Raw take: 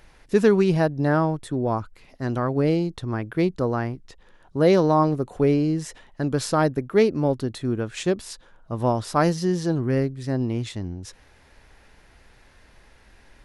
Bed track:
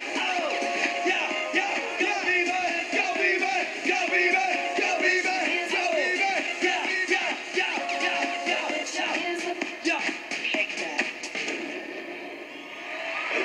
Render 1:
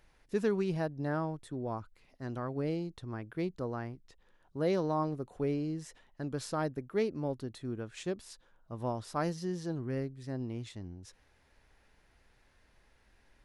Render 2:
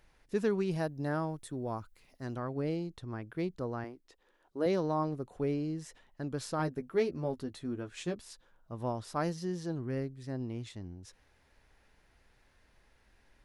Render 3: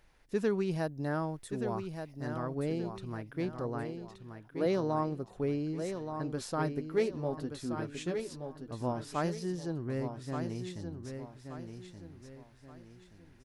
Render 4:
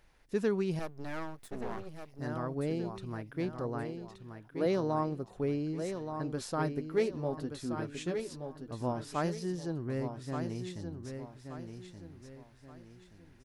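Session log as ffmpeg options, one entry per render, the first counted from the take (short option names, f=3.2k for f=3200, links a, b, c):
-af "volume=-13dB"
-filter_complex "[0:a]asettb=1/sr,asplit=3[a][b][c];[a]atrim=end=0.714[d];[b]atrim=start=0.71:end=2.34,asetpts=PTS-STARTPTS,afade=t=in:d=0.004:c=qsin,afade=t=out:st=1.626:d=0.004:c=qsin,highshelf=f=6.7k:g=11.5[e];[c]atrim=start=2.336[f];[d][e]acrossfade=d=0.004:c1=hsin:c2=qsin[g];[g][f]acrossfade=d=0.004:c1=qsin:c2=hsin,asettb=1/sr,asplit=3[h][i][j];[h]atrim=end=3.844[k];[i]atrim=start=3.84:end=4.66,asetpts=PTS-STARTPTS,afade=t=in:d=0.004:c=qsin,afade=t=out:st=0.816:d=0.004:c=qsin,lowshelf=f=220:t=q:w=1.5:g=-11[l];[j]atrim=start=4.656[m];[k][l]acrossfade=d=0.004:c1=hsin:c2=qsin[n];[n][m]acrossfade=d=0.004:c1=qsin:c2=hsin,asettb=1/sr,asplit=3[o][p][q];[o]atrim=end=6.584[r];[p]atrim=start=6.58:end=8.16,asetpts=PTS-STARTPTS,afade=t=in:d=0.004:c=qsin,afade=t=out:st=1.576:d=0.004:c=qsin,asplit=2[s][t];[t]adelay=12,volume=-5.5dB[u];[s][u]amix=inputs=2:normalize=0,atrim=end_sample=69678[v];[q]atrim=start=8.156[w];[r][v]acrossfade=d=0.004:c1=hsin:c2=qsin[x];[x][w]acrossfade=d=0.004:c1=qsin:c2=hsin"
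-af "aecho=1:1:1176|2352|3528|4704:0.422|0.152|0.0547|0.0197"
-filter_complex "[0:a]asettb=1/sr,asplit=3[a][b][c];[a]atrim=end=0.794[d];[b]atrim=start=0.79:end=2.19,asetpts=PTS-STARTPTS,afade=t=in:d=0.004:c=qsin,afade=t=out:st=1.396:d=0.004:c=qsin,aeval=exprs='max(val(0),0)':c=same[e];[c]atrim=start=2.186[f];[d][e]acrossfade=d=0.004:c1=hsin:c2=qsin[g];[g][f]acrossfade=d=0.004:c1=qsin:c2=hsin"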